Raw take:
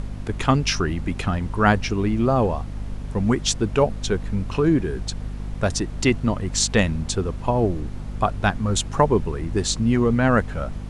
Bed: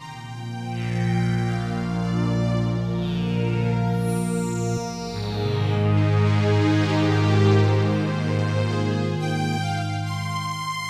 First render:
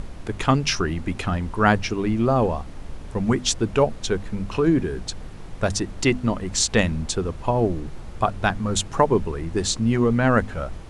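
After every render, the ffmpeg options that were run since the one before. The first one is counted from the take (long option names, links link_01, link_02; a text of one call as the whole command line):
ffmpeg -i in.wav -af "bandreject=frequency=50:width_type=h:width=6,bandreject=frequency=100:width_type=h:width=6,bandreject=frequency=150:width_type=h:width=6,bandreject=frequency=200:width_type=h:width=6,bandreject=frequency=250:width_type=h:width=6" out.wav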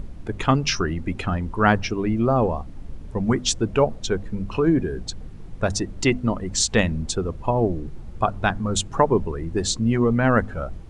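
ffmpeg -i in.wav -af "afftdn=noise_reduction=10:noise_floor=-37" out.wav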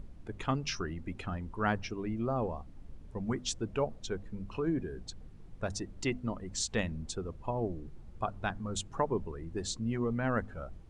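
ffmpeg -i in.wav -af "volume=-13dB" out.wav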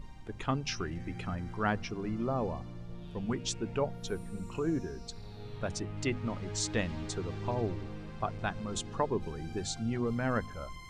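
ffmpeg -i in.wav -i bed.wav -filter_complex "[1:a]volume=-22dB[link_01];[0:a][link_01]amix=inputs=2:normalize=0" out.wav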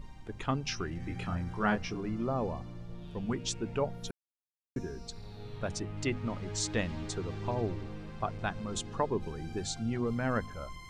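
ffmpeg -i in.wav -filter_complex "[0:a]asettb=1/sr,asplit=3[link_01][link_02][link_03];[link_01]atrim=end=1.004[link_04];[link_02]atrim=start=1:end=2,asetpts=PTS-STARTPTS,afade=type=in:duration=0.004:curve=qsin,afade=type=out:start_time=0.996:duration=0.004:curve=qsin,asplit=2[link_05][link_06];[link_06]adelay=24,volume=-4dB[link_07];[link_05][link_07]amix=inputs=2:normalize=0,atrim=end_sample=44100[link_08];[link_03]atrim=start=1.996[link_09];[link_04][link_08]acrossfade=duration=0.004:curve1=hsin:curve2=qsin[link_10];[link_10][link_09]acrossfade=duration=0.004:curve1=qsin:curve2=hsin,asplit=3[link_11][link_12][link_13];[link_11]atrim=end=4.11,asetpts=PTS-STARTPTS,afade=type=out:start_time=4.106:duration=0.004:curve=hsin[link_14];[link_12]atrim=start=4.11:end=4.76,asetpts=PTS-STARTPTS,volume=0[link_15];[link_13]atrim=start=4.76,asetpts=PTS-STARTPTS,afade=type=in:duration=0.004:curve=hsin[link_16];[link_14][link_15][link_16]concat=n=3:v=0:a=1" out.wav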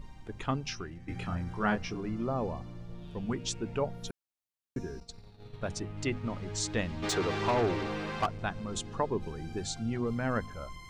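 ffmpeg -i in.wav -filter_complex "[0:a]asettb=1/sr,asplit=3[link_01][link_02][link_03];[link_01]atrim=end=5.004[link_04];[link_02]atrim=start=5:end=6.26,asetpts=PTS-STARTPTS,afade=type=in:duration=0.004:curve=qsin,afade=type=out:start_time=1.256:duration=0.004:curve=qsin,agate=range=-33dB:threshold=-39dB:ratio=3:release=100:detection=peak[link_05];[link_03]atrim=start=6.256[link_06];[link_04][link_05]acrossfade=duration=0.004:curve1=hsin:curve2=qsin[link_07];[link_07][link_06]acrossfade=duration=0.004:curve1=qsin:curve2=hsin,asplit=3[link_08][link_09][link_10];[link_08]afade=type=out:start_time=7.02:duration=0.02[link_11];[link_09]asplit=2[link_12][link_13];[link_13]highpass=frequency=720:poles=1,volume=23dB,asoftclip=type=tanh:threshold=-19dB[link_14];[link_12][link_14]amix=inputs=2:normalize=0,lowpass=frequency=4300:poles=1,volume=-6dB,afade=type=in:start_time=7.02:duration=0.02,afade=type=out:start_time=8.25:duration=0.02[link_15];[link_10]afade=type=in:start_time=8.25:duration=0.02[link_16];[link_11][link_15][link_16]amix=inputs=3:normalize=0,asplit=2[link_17][link_18];[link_17]atrim=end=1.08,asetpts=PTS-STARTPTS,afade=type=out:start_time=0.53:duration=0.55:silence=0.281838[link_19];[link_18]atrim=start=1.08,asetpts=PTS-STARTPTS,afade=type=in:duration=0.004:curve=hsin:silence=0.281838[link_20];[link_19][link_20]concat=n=2:v=0:a=1" out.wav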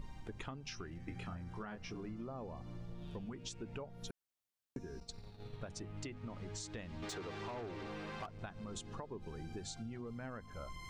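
ffmpeg -i in.wav -af "alimiter=limit=-24dB:level=0:latency=1:release=360,acompressor=threshold=-42dB:ratio=10" out.wav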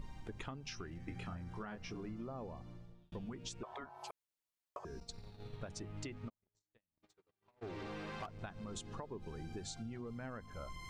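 ffmpeg -i in.wav -filter_complex "[0:a]asettb=1/sr,asplit=3[link_01][link_02][link_03];[link_01]atrim=end=3.634[link_04];[link_02]atrim=start=3.63:end=4.85,asetpts=PTS-STARTPTS,afade=type=in:duration=0.004:curve=qsin,afade=type=out:start_time=1.216:duration=0.004:curve=qsin,aeval=exprs='val(0)*sin(2*PI*840*n/s)':channel_layout=same[link_05];[link_03]atrim=start=4.846[link_06];[link_04][link_05]acrossfade=duration=0.004:curve1=hsin:curve2=qsin[link_07];[link_07][link_06]acrossfade=duration=0.004:curve1=qsin:curve2=hsin,asplit=3[link_08][link_09][link_10];[link_08]afade=type=out:start_time=6.28:duration=0.02[link_11];[link_09]agate=range=-50dB:threshold=-40dB:ratio=16:release=100:detection=peak,afade=type=in:start_time=6.28:duration=0.02,afade=type=out:start_time=7.61:duration=0.02[link_12];[link_10]afade=type=in:start_time=7.61:duration=0.02[link_13];[link_11][link_12][link_13]amix=inputs=3:normalize=0,asplit=2[link_14][link_15];[link_14]atrim=end=3.12,asetpts=PTS-STARTPTS,afade=type=out:start_time=2.45:duration=0.67[link_16];[link_15]atrim=start=3.12,asetpts=PTS-STARTPTS,afade=type=in:duration=0.004:curve=hsin[link_17];[link_16][link_17]concat=n=2:v=0:a=1" out.wav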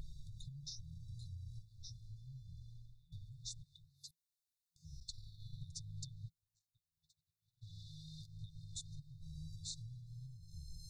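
ffmpeg -i in.wav -af "afftfilt=real='re*(1-between(b*sr/4096,170,3500))':imag='im*(1-between(b*sr/4096,170,3500))':win_size=4096:overlap=0.75,equalizer=frequency=1600:width_type=o:width=1.3:gain=12" out.wav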